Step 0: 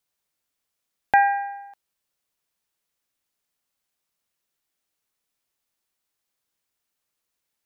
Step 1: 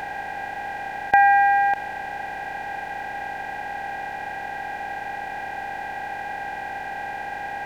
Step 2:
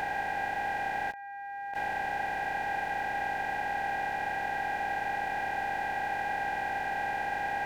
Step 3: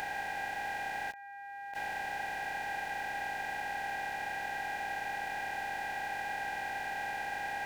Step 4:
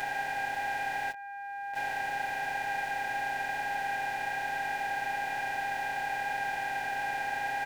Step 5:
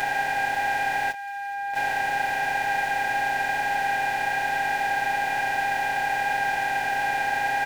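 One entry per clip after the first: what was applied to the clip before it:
per-bin compression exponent 0.2
negative-ratio compressor -28 dBFS, ratio -1; gain -4 dB
high shelf 2500 Hz +11 dB; gain -7 dB
comb 7.5 ms, depth 97%
thin delay 0.426 s, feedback 80%, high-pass 2700 Hz, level -16 dB; gain +8 dB

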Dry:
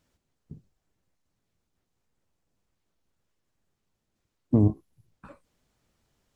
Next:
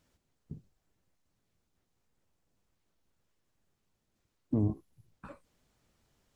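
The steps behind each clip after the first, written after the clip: limiter -20 dBFS, peak gain reduction 10.5 dB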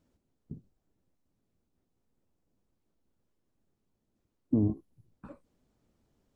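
EQ curve 150 Hz 0 dB, 250 Hz +5 dB, 1900 Hz -8 dB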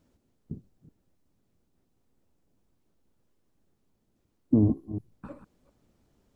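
reverse delay 0.178 s, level -10.5 dB; gain +5 dB

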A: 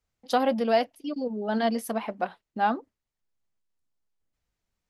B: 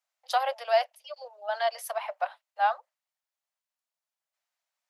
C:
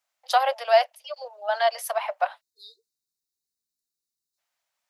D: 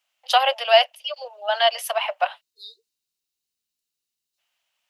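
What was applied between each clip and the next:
steep high-pass 570 Hz 72 dB/oct
spectral delete 2.41–4.38, 460–3600 Hz; gain +5.5 dB
bell 2900 Hz +13 dB 0.5 oct; gain +2 dB

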